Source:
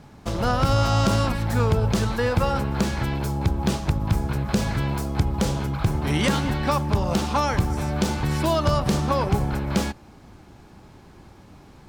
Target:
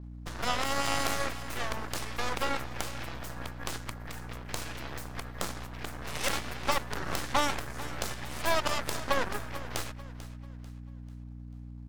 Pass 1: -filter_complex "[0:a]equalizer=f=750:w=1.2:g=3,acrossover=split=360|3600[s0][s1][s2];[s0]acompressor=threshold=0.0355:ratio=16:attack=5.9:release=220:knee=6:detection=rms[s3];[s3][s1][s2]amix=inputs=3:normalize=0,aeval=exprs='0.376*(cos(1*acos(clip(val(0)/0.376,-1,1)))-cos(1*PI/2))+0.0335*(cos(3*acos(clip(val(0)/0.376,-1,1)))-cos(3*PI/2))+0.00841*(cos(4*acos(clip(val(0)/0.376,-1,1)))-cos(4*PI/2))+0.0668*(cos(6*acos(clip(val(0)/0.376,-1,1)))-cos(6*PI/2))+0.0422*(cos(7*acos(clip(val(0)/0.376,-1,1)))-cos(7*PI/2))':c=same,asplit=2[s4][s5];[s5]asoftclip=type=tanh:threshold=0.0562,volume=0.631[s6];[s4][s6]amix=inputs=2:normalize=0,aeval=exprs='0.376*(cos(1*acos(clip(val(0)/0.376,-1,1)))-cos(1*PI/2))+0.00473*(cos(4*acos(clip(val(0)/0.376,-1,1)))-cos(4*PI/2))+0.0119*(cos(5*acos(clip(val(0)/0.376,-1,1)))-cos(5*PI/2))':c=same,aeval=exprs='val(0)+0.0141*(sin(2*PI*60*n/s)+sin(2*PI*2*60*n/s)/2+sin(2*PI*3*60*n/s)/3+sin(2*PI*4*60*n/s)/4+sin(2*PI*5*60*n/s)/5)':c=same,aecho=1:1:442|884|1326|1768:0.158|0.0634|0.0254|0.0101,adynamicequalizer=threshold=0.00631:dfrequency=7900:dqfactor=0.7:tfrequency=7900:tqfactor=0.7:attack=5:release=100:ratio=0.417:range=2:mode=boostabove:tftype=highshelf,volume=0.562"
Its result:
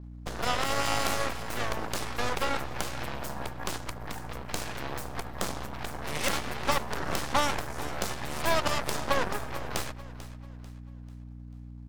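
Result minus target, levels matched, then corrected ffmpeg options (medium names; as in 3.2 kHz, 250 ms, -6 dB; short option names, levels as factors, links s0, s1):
compression: peak gain reduction -10 dB; saturation: distortion -5 dB
-filter_complex "[0:a]equalizer=f=750:w=1.2:g=3,acrossover=split=360|3600[s0][s1][s2];[s0]acompressor=threshold=0.0106:ratio=16:attack=5.9:release=220:knee=6:detection=rms[s3];[s3][s1][s2]amix=inputs=3:normalize=0,aeval=exprs='0.376*(cos(1*acos(clip(val(0)/0.376,-1,1)))-cos(1*PI/2))+0.0335*(cos(3*acos(clip(val(0)/0.376,-1,1)))-cos(3*PI/2))+0.00841*(cos(4*acos(clip(val(0)/0.376,-1,1)))-cos(4*PI/2))+0.0668*(cos(6*acos(clip(val(0)/0.376,-1,1)))-cos(6*PI/2))+0.0422*(cos(7*acos(clip(val(0)/0.376,-1,1)))-cos(7*PI/2))':c=same,asplit=2[s4][s5];[s5]asoftclip=type=tanh:threshold=0.0178,volume=0.631[s6];[s4][s6]amix=inputs=2:normalize=0,aeval=exprs='0.376*(cos(1*acos(clip(val(0)/0.376,-1,1)))-cos(1*PI/2))+0.00473*(cos(4*acos(clip(val(0)/0.376,-1,1)))-cos(4*PI/2))+0.0119*(cos(5*acos(clip(val(0)/0.376,-1,1)))-cos(5*PI/2))':c=same,aeval=exprs='val(0)+0.0141*(sin(2*PI*60*n/s)+sin(2*PI*2*60*n/s)/2+sin(2*PI*3*60*n/s)/3+sin(2*PI*4*60*n/s)/4+sin(2*PI*5*60*n/s)/5)':c=same,aecho=1:1:442|884|1326|1768:0.158|0.0634|0.0254|0.0101,adynamicequalizer=threshold=0.00631:dfrequency=7900:dqfactor=0.7:tfrequency=7900:tqfactor=0.7:attack=5:release=100:ratio=0.417:range=2:mode=boostabove:tftype=highshelf,volume=0.562"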